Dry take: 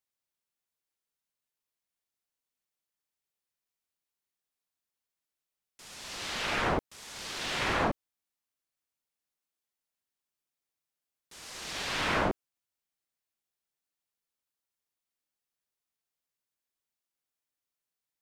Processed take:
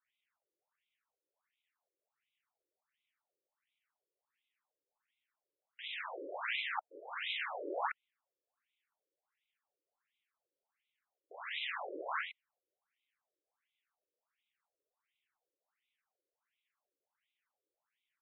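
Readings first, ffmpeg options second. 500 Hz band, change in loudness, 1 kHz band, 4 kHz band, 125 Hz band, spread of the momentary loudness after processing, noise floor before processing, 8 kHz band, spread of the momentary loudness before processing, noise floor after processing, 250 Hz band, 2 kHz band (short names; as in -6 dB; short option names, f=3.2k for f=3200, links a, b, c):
-9.0 dB, -8.0 dB, -7.0 dB, -7.0 dB, under -40 dB, 11 LU, under -85 dBFS, under -35 dB, 16 LU, under -85 dBFS, -16.5 dB, -6.0 dB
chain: -af "areverse,acompressor=threshold=-40dB:ratio=12,areverse,aresample=8000,aresample=44100,aeval=exprs='max(val(0),0)':c=same,afftfilt=real='re*between(b*sr/1024,410*pow(2900/410,0.5+0.5*sin(2*PI*1.4*pts/sr))/1.41,410*pow(2900/410,0.5+0.5*sin(2*PI*1.4*pts/sr))*1.41)':imag='im*between(b*sr/1024,410*pow(2900/410,0.5+0.5*sin(2*PI*1.4*pts/sr))/1.41,410*pow(2900/410,0.5+0.5*sin(2*PI*1.4*pts/sr))*1.41)':win_size=1024:overlap=0.75,volume=17dB"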